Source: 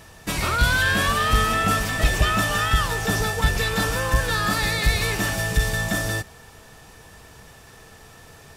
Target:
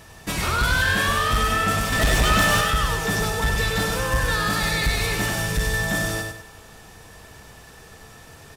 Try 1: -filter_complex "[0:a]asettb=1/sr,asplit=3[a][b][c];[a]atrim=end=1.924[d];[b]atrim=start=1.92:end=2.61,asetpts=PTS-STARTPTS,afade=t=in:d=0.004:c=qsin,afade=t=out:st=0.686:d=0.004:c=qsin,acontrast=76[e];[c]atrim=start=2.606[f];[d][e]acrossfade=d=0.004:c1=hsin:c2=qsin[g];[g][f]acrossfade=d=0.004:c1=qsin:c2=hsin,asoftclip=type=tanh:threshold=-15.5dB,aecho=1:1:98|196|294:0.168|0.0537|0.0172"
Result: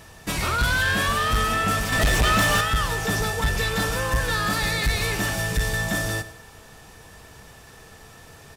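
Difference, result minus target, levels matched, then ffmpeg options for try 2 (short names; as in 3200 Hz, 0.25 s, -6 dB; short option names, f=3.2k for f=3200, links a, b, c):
echo-to-direct -11 dB
-filter_complex "[0:a]asettb=1/sr,asplit=3[a][b][c];[a]atrim=end=1.924[d];[b]atrim=start=1.92:end=2.61,asetpts=PTS-STARTPTS,afade=t=in:d=0.004:c=qsin,afade=t=out:st=0.686:d=0.004:c=qsin,acontrast=76[e];[c]atrim=start=2.606[f];[d][e]acrossfade=d=0.004:c1=hsin:c2=qsin[g];[g][f]acrossfade=d=0.004:c1=qsin:c2=hsin,asoftclip=type=tanh:threshold=-15.5dB,aecho=1:1:98|196|294|392:0.596|0.191|0.061|0.0195"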